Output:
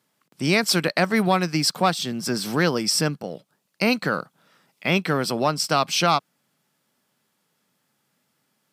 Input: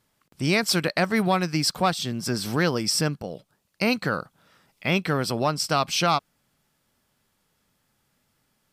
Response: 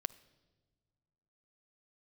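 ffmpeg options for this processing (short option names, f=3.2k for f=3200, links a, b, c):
-filter_complex "[0:a]highpass=f=140:w=0.5412,highpass=f=140:w=1.3066,asplit=2[a][b];[b]aeval=exprs='sgn(val(0))*max(abs(val(0))-0.00631,0)':c=same,volume=-10dB[c];[a][c]amix=inputs=2:normalize=0"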